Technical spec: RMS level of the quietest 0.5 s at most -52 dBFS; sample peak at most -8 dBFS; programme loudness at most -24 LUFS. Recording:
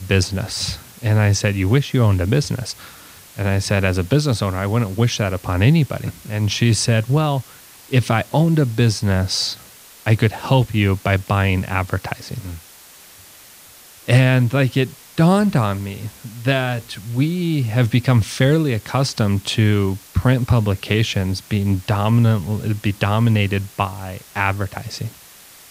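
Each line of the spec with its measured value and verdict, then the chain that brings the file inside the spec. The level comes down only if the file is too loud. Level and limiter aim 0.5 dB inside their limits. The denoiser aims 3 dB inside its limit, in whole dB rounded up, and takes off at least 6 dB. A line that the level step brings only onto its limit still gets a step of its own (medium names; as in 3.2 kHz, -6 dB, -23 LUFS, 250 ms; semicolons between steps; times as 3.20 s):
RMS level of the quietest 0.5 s -44 dBFS: fail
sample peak -1.5 dBFS: fail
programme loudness -19.0 LUFS: fail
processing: noise reduction 6 dB, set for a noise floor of -44 dBFS; trim -5.5 dB; peak limiter -8.5 dBFS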